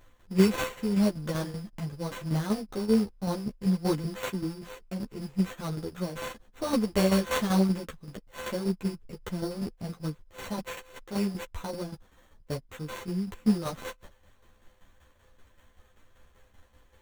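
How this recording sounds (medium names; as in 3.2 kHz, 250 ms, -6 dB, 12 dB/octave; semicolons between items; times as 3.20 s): a buzz of ramps at a fixed pitch in blocks of 8 samples; tremolo saw down 5.2 Hz, depth 65%; aliases and images of a low sample rate 5 kHz, jitter 0%; a shimmering, thickened sound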